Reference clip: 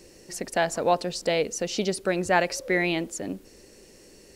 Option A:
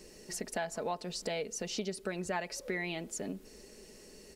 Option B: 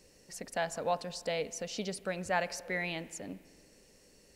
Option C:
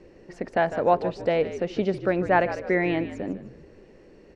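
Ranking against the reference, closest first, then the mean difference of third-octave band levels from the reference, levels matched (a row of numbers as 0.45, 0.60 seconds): B, A, C; 2.0, 4.5, 7.5 decibels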